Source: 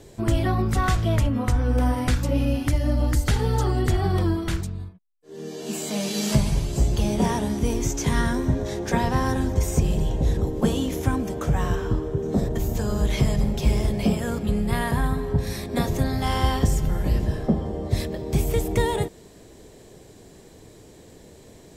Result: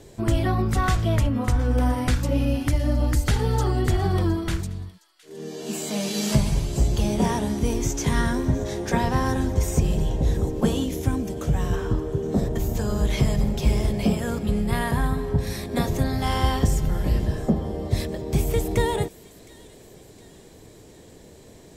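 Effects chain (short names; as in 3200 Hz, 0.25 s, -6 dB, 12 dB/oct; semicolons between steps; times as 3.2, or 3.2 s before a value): 10.84–11.73 bell 1200 Hz -6.5 dB 1.8 oct; thin delay 0.714 s, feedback 51%, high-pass 2500 Hz, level -18 dB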